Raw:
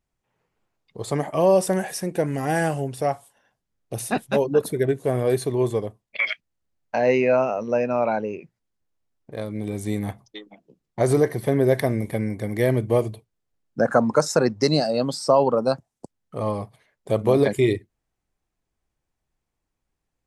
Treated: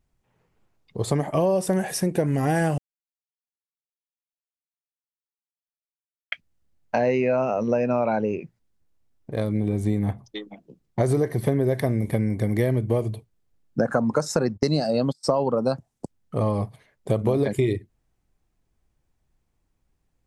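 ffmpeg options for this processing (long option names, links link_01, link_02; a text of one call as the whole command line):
ffmpeg -i in.wav -filter_complex "[0:a]asettb=1/sr,asplit=3[link_01][link_02][link_03];[link_01]atrim=end=9.604[link_04];[link_02]atrim=start=9.6:end=10.24,asetpts=PTS-STARTPTS,afade=type=in:duration=0.004:curve=qsin,afade=type=out:start_time=0.636:duration=0.004:curve=qsin,highshelf=frequency=2800:gain=-8.5[link_05];[link_03]atrim=start=10.236[link_06];[link_04][link_05]acrossfade=duration=0.004:curve1=hsin:curve2=qsin[link_07];[link_07][link_06]acrossfade=duration=0.004:curve1=qsin:curve2=hsin,asplit=3[link_08][link_09][link_10];[link_08]afade=type=out:start_time=14.56:duration=0.02[link_11];[link_09]agate=range=-34dB:threshold=-27dB:ratio=16:release=100:detection=peak,afade=type=in:start_time=14.56:duration=0.02,afade=type=out:start_time=15.23:duration=0.02[link_12];[link_10]afade=type=in:start_time=15.23:duration=0.02[link_13];[link_11][link_12][link_13]amix=inputs=3:normalize=0,asplit=3[link_14][link_15][link_16];[link_14]atrim=end=2.78,asetpts=PTS-STARTPTS,afade=type=out:start_time=2.776:duration=0.004:curve=hsin[link_17];[link_15]atrim=start=2.78:end=6.32,asetpts=PTS-STARTPTS,volume=0[link_18];[link_16]atrim=start=6.32,asetpts=PTS-STARTPTS,afade=type=in:duration=0.004:curve=hsin[link_19];[link_17][link_18][link_19]concat=n=3:v=0:a=1,lowshelf=frequency=290:gain=7.5,acompressor=threshold=-21dB:ratio=6,volume=2.5dB" out.wav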